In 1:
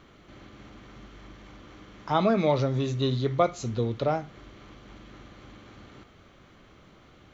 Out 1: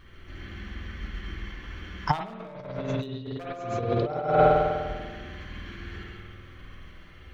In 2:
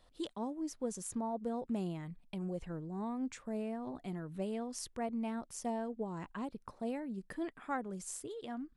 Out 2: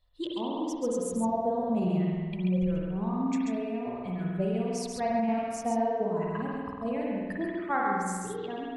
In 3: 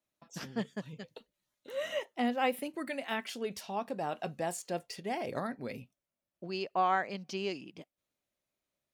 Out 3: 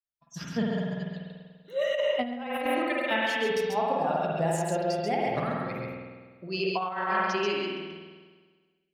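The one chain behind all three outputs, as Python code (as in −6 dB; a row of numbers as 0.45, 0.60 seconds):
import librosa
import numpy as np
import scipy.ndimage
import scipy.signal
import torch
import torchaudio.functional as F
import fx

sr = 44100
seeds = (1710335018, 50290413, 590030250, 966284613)

p1 = fx.bin_expand(x, sr, power=1.5)
p2 = fx.level_steps(p1, sr, step_db=13)
p3 = p1 + (p2 * 10.0 ** (-2.0 / 20.0))
p4 = fx.high_shelf(p3, sr, hz=7800.0, db=-7.5)
p5 = p4 + fx.echo_single(p4, sr, ms=136, db=-3.5, dry=0)
p6 = 10.0 ** (-13.5 / 20.0) * (np.abs((p5 / 10.0 ** (-13.5 / 20.0) + 3.0) % 4.0 - 2.0) - 1.0)
p7 = fx.rev_spring(p6, sr, rt60_s=1.5, pass_ms=(49,), chirp_ms=55, drr_db=-2.0)
p8 = fx.over_compress(p7, sr, threshold_db=-29.0, ratio=-0.5)
p9 = fx.peak_eq(p8, sr, hz=310.0, db=-5.0, octaves=0.46)
y = p9 * 10.0 ** (-30 / 20.0) / np.sqrt(np.mean(np.square(p9)))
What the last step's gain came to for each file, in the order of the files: +4.5, +5.0, +4.0 decibels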